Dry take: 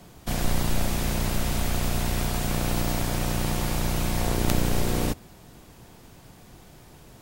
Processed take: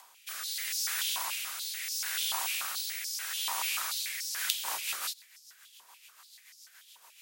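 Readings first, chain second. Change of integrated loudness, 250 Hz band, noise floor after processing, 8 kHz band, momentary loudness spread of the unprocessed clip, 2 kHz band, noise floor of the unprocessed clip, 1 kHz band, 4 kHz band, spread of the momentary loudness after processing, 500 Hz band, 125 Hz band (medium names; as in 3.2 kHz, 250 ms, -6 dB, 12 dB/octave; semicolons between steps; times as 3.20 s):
-4.5 dB, under -40 dB, -60 dBFS, 0.0 dB, 3 LU, -2.0 dB, -50 dBFS, -8.0 dB, +1.5 dB, 5 LU, -25.5 dB, under -40 dB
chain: tilt EQ +3 dB/octave; upward compressor, threshold -44 dBFS; frequency shift +54 Hz; rotary cabinet horn 0.75 Hz, later 7 Hz, at 4.09 s; step-sequenced high-pass 6.9 Hz 970–5200 Hz; trim -7.5 dB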